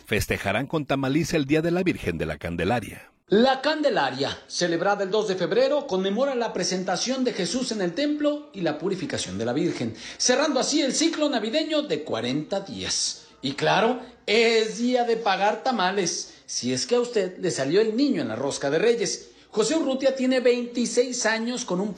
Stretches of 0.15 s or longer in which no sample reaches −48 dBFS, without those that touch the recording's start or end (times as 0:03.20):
0:03.08–0:03.29